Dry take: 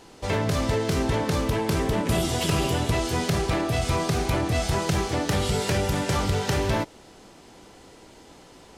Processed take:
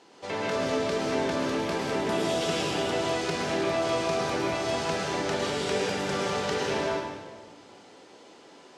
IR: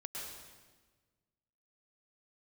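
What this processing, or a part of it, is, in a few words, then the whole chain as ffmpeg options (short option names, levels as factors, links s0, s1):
supermarket ceiling speaker: -filter_complex "[0:a]highpass=250,lowpass=6500[s0];[1:a]atrim=start_sample=2205[s1];[s0][s1]afir=irnorm=-1:irlink=0"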